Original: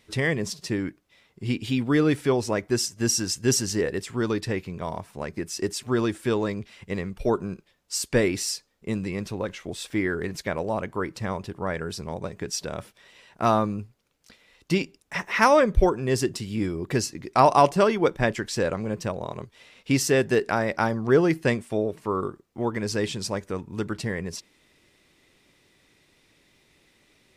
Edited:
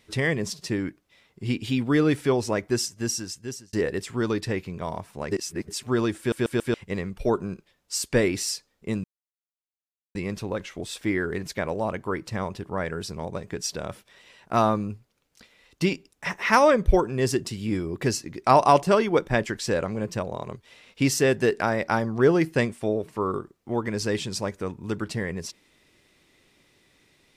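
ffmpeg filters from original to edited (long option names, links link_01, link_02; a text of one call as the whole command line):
ffmpeg -i in.wav -filter_complex "[0:a]asplit=9[link_01][link_02][link_03][link_04][link_05][link_06][link_07][link_08][link_09];[link_01]atrim=end=3.73,asetpts=PTS-STARTPTS,afade=type=out:start_time=2.68:duration=1.05[link_10];[link_02]atrim=start=3.73:end=5.312,asetpts=PTS-STARTPTS,afade=type=in:duration=0.004:curve=hsin[link_11];[link_03]atrim=start=5.308:end=5.682,asetpts=PTS-STARTPTS,areverse[link_12];[link_04]atrim=start=5.678:end=6.322[link_13];[link_05]atrim=start=6.178:end=6.322[link_14];[link_06]atrim=start=6.178:end=6.322[link_15];[link_07]atrim=start=6.178:end=6.322[link_16];[link_08]atrim=start=6.738:end=9.04,asetpts=PTS-STARTPTS,afade=type=out:start_time=2.298:duration=0.004:curve=hsin,apad=pad_dur=1.11[link_17];[link_09]atrim=start=9.04,asetpts=PTS-STARTPTS,afade=type=in:duration=0.004:curve=hsin[link_18];[link_10][link_11]concat=n=2:v=0:a=1[link_19];[link_19][link_12]acrossfade=duration=0.004:curve1=hsin:curve2=hsin[link_20];[link_20][link_13]acrossfade=duration=0.004:curve1=hsin:curve2=hsin[link_21];[link_21][link_14]acrossfade=duration=0.004:curve1=hsin:curve2=hsin[link_22];[link_22][link_15]acrossfade=duration=0.004:curve1=hsin:curve2=hsin[link_23];[link_23][link_16]acrossfade=duration=0.004:curve1=hsin:curve2=hsin[link_24];[link_17][link_18]concat=n=2:v=0:a=1[link_25];[link_24][link_25]acrossfade=duration=0.004:curve1=hsin:curve2=hsin" out.wav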